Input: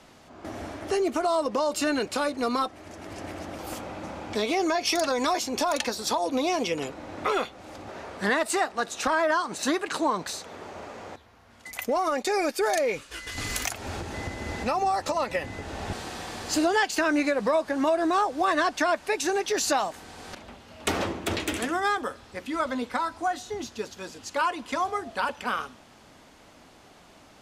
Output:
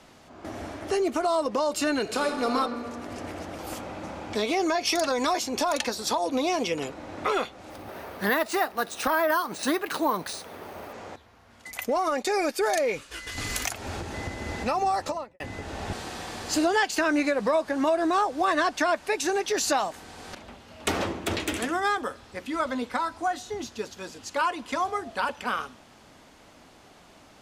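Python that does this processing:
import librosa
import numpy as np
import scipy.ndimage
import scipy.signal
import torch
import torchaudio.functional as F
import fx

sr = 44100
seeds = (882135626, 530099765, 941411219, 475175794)

y = fx.reverb_throw(x, sr, start_s=2.0, length_s=0.55, rt60_s=2.7, drr_db=3.5)
y = fx.resample_bad(y, sr, factor=3, down='filtered', up='hold', at=(7.7, 10.93))
y = fx.studio_fade_out(y, sr, start_s=14.98, length_s=0.42)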